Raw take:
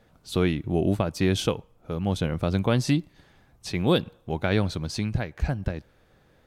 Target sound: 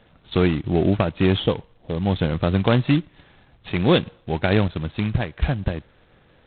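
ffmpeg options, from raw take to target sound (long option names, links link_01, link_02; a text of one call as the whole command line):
ffmpeg -i in.wav -filter_complex "[0:a]asplit=3[link_01][link_02][link_03];[link_01]afade=type=out:start_time=1.39:duration=0.02[link_04];[link_02]asuperstop=centerf=1800:order=20:qfactor=1.1,afade=type=in:start_time=1.39:duration=0.02,afade=type=out:start_time=2.17:duration=0.02[link_05];[link_03]afade=type=in:start_time=2.17:duration=0.02[link_06];[link_04][link_05][link_06]amix=inputs=3:normalize=0,asettb=1/sr,asplit=3[link_07][link_08][link_09];[link_07]atrim=end=4.684[link_10];[link_08]atrim=start=4.68:end=5.15,asetpts=PTS-STARTPTS,afade=type=in:duration=0.004:curve=qsin,afade=type=out:start_time=0.466:duration=0.004:curve=qsin,agate=range=-33dB:threshold=-29dB:ratio=3:detection=peak[link_11];[link_09]atrim=start=5.146[link_12];[link_10][link_11]acrossfade=duration=0.004:curve1=hsin:curve2=qsin[link_13];[link_13][link_12]acrossfade=duration=0.004:curve1=qsin:curve2=hsin,volume=4.5dB" -ar 8000 -c:a adpcm_g726 -b:a 16k out.wav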